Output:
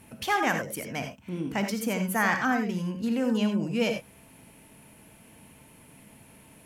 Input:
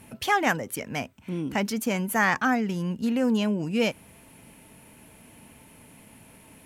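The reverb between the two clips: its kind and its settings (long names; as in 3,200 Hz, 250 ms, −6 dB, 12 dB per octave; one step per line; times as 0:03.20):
reverb whose tail is shaped and stops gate 110 ms rising, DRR 5.5 dB
level −3 dB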